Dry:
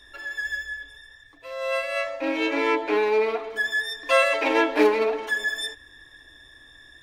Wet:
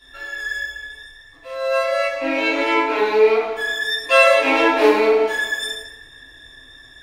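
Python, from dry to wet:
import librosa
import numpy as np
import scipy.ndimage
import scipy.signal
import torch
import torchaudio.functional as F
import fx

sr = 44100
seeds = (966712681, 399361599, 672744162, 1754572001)

y = fx.rev_plate(x, sr, seeds[0], rt60_s=0.81, hf_ratio=0.95, predelay_ms=0, drr_db=-9.5)
y = y * 10.0 ** (-4.0 / 20.0)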